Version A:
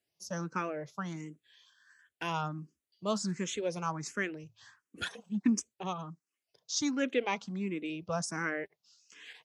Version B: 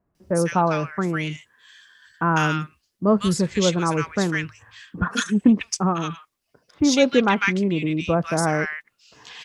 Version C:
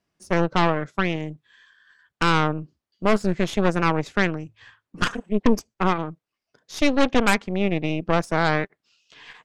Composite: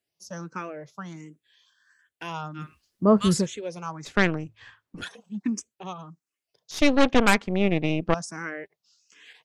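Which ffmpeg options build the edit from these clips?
-filter_complex "[2:a]asplit=2[a][b];[0:a]asplit=4[c][d][e][f];[c]atrim=end=2.7[g];[1:a]atrim=start=2.54:end=3.53[h];[d]atrim=start=3.37:end=4.052[i];[a]atrim=start=4.048:end=5.012[j];[e]atrim=start=5.008:end=6.712[k];[b]atrim=start=6.708:end=8.142[l];[f]atrim=start=8.138[m];[g][h]acrossfade=d=0.16:c1=tri:c2=tri[n];[n][i]acrossfade=d=0.16:c1=tri:c2=tri[o];[o][j]acrossfade=d=0.004:c1=hsin:c2=hsin[p];[p][k]acrossfade=d=0.004:c1=hsin:c2=hsin[q];[q][l]acrossfade=d=0.004:c1=hsin:c2=hsin[r];[r][m]acrossfade=d=0.004:c1=hsin:c2=hsin"

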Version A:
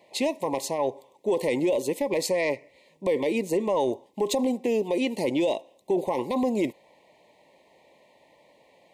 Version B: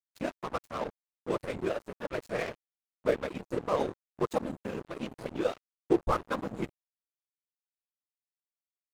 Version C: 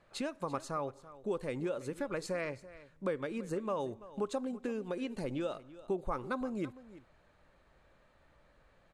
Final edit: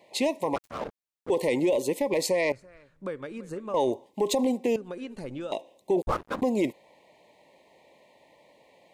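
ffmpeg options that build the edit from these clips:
-filter_complex "[1:a]asplit=2[a][b];[2:a]asplit=2[c][d];[0:a]asplit=5[e][f][g][h][i];[e]atrim=end=0.562[j];[a]atrim=start=0.558:end=1.302[k];[f]atrim=start=1.298:end=2.522[l];[c]atrim=start=2.518:end=3.742[m];[g]atrim=start=3.738:end=4.762[n];[d]atrim=start=4.758:end=5.522[o];[h]atrim=start=5.518:end=6.022[p];[b]atrim=start=6.018:end=6.422[q];[i]atrim=start=6.418[r];[j][k]acrossfade=d=0.004:c1=hsin:c2=hsin[s];[s][l]acrossfade=d=0.004:c1=hsin:c2=hsin[t];[t][m]acrossfade=d=0.004:c1=hsin:c2=hsin[u];[u][n]acrossfade=d=0.004:c1=hsin:c2=hsin[v];[v][o]acrossfade=d=0.004:c1=hsin:c2=hsin[w];[w][p]acrossfade=d=0.004:c1=hsin:c2=hsin[x];[x][q]acrossfade=d=0.004:c1=hsin:c2=hsin[y];[y][r]acrossfade=d=0.004:c1=hsin:c2=hsin"

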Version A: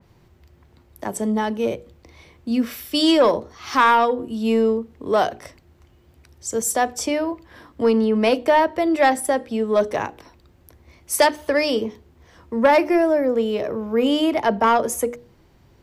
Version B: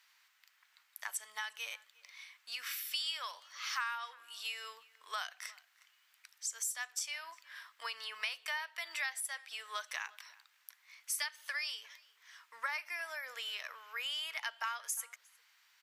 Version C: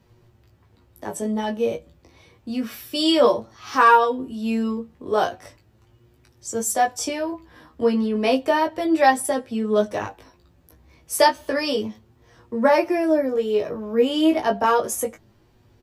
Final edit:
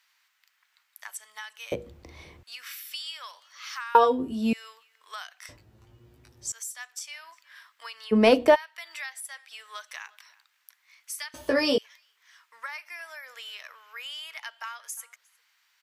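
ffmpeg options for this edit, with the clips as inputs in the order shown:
-filter_complex "[0:a]asplit=2[a][b];[2:a]asplit=3[c][d][e];[1:a]asplit=6[f][g][h][i][j][k];[f]atrim=end=1.722[l];[a]atrim=start=1.718:end=2.432[m];[g]atrim=start=2.428:end=3.952[n];[c]atrim=start=3.948:end=4.532[o];[h]atrim=start=4.528:end=5.492[p];[d]atrim=start=5.488:end=6.522[q];[i]atrim=start=6.518:end=8.13[r];[b]atrim=start=8.11:end=8.56[s];[j]atrim=start=8.54:end=11.342[t];[e]atrim=start=11.338:end=11.782[u];[k]atrim=start=11.778[v];[l][m]acrossfade=d=0.004:c1=hsin:c2=hsin[w];[w][n]acrossfade=d=0.004:c1=hsin:c2=hsin[x];[x][o]acrossfade=d=0.004:c1=hsin:c2=hsin[y];[y][p]acrossfade=d=0.004:c1=hsin:c2=hsin[z];[z][q]acrossfade=d=0.004:c1=hsin:c2=hsin[aa];[aa][r]acrossfade=d=0.004:c1=hsin:c2=hsin[ab];[ab][s]acrossfade=d=0.02:c1=tri:c2=tri[ac];[ac][t]acrossfade=d=0.02:c1=tri:c2=tri[ad];[ad][u]acrossfade=d=0.004:c1=hsin:c2=hsin[ae];[ae][v]acrossfade=d=0.004:c1=hsin:c2=hsin"

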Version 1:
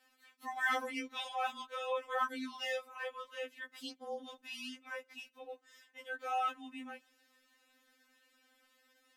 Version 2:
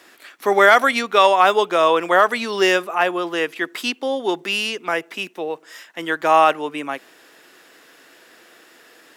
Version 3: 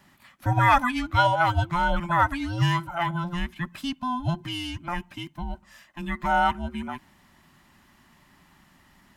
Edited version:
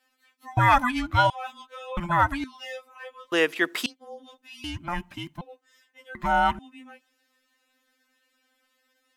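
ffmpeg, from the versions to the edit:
-filter_complex "[2:a]asplit=4[a][b][c][d];[0:a]asplit=6[e][f][g][h][i][j];[e]atrim=end=0.572[k];[a]atrim=start=0.568:end=1.302[l];[f]atrim=start=1.298:end=1.972[m];[b]atrim=start=1.968:end=2.442[n];[g]atrim=start=2.438:end=3.322[o];[1:a]atrim=start=3.318:end=3.862[p];[h]atrim=start=3.858:end=4.642[q];[c]atrim=start=4.638:end=5.412[r];[i]atrim=start=5.408:end=6.152[s];[d]atrim=start=6.148:end=6.592[t];[j]atrim=start=6.588[u];[k][l]acrossfade=d=0.004:c1=hsin:c2=hsin[v];[v][m]acrossfade=d=0.004:c1=hsin:c2=hsin[w];[w][n]acrossfade=d=0.004:c1=hsin:c2=hsin[x];[x][o]acrossfade=d=0.004:c1=hsin:c2=hsin[y];[y][p]acrossfade=d=0.004:c1=hsin:c2=hsin[z];[z][q]acrossfade=d=0.004:c1=hsin:c2=hsin[aa];[aa][r]acrossfade=d=0.004:c1=hsin:c2=hsin[ab];[ab][s]acrossfade=d=0.004:c1=hsin:c2=hsin[ac];[ac][t]acrossfade=d=0.004:c1=hsin:c2=hsin[ad];[ad][u]acrossfade=d=0.004:c1=hsin:c2=hsin"

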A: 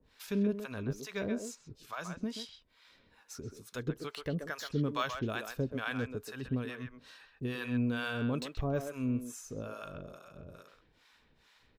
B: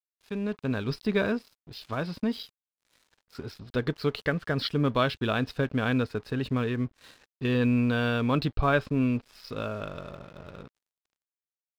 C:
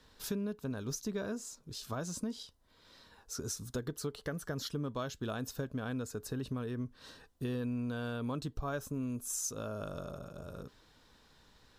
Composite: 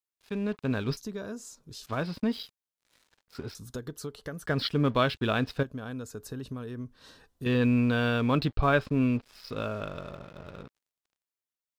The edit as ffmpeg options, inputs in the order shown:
-filter_complex "[2:a]asplit=3[a][b][c];[1:a]asplit=4[d][e][f][g];[d]atrim=end=0.972[h];[a]atrim=start=0.968:end=1.862[i];[e]atrim=start=1.858:end=3.552[j];[b]atrim=start=3.548:end=4.462[k];[f]atrim=start=4.458:end=5.632[l];[c]atrim=start=5.628:end=7.462[m];[g]atrim=start=7.458[n];[h][i]acrossfade=d=0.004:c1=hsin:c2=hsin[o];[o][j]acrossfade=d=0.004:c1=hsin:c2=hsin[p];[p][k]acrossfade=d=0.004:c1=hsin:c2=hsin[q];[q][l]acrossfade=d=0.004:c1=hsin:c2=hsin[r];[r][m]acrossfade=d=0.004:c1=hsin:c2=hsin[s];[s][n]acrossfade=d=0.004:c1=hsin:c2=hsin"

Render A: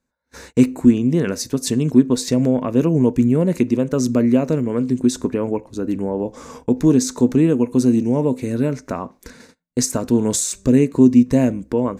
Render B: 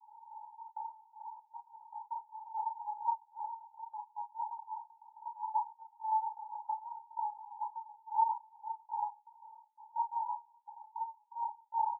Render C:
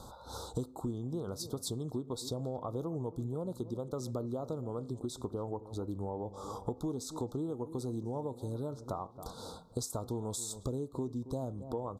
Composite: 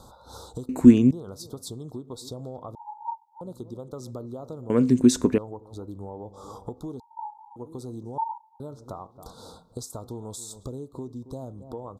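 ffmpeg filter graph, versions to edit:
-filter_complex "[0:a]asplit=2[a][b];[1:a]asplit=3[c][d][e];[2:a]asplit=6[f][g][h][i][j][k];[f]atrim=end=0.692[l];[a]atrim=start=0.688:end=1.112[m];[g]atrim=start=1.108:end=2.752[n];[c]atrim=start=2.748:end=3.412[o];[h]atrim=start=3.408:end=4.702[p];[b]atrim=start=4.698:end=5.382[q];[i]atrim=start=5.378:end=7.002[r];[d]atrim=start=6.998:end=7.562[s];[j]atrim=start=7.558:end=8.182[t];[e]atrim=start=8.178:end=8.602[u];[k]atrim=start=8.598[v];[l][m]acrossfade=d=0.004:c1=hsin:c2=hsin[w];[w][n]acrossfade=d=0.004:c1=hsin:c2=hsin[x];[x][o]acrossfade=d=0.004:c1=hsin:c2=hsin[y];[y][p]acrossfade=d=0.004:c1=hsin:c2=hsin[z];[z][q]acrossfade=d=0.004:c1=hsin:c2=hsin[aa];[aa][r]acrossfade=d=0.004:c1=hsin:c2=hsin[ab];[ab][s]acrossfade=d=0.004:c1=hsin:c2=hsin[ac];[ac][t]acrossfade=d=0.004:c1=hsin:c2=hsin[ad];[ad][u]acrossfade=d=0.004:c1=hsin:c2=hsin[ae];[ae][v]acrossfade=d=0.004:c1=hsin:c2=hsin"

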